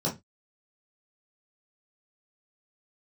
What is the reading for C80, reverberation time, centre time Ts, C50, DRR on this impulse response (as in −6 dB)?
22.5 dB, 0.20 s, 20 ms, 12.0 dB, −6.0 dB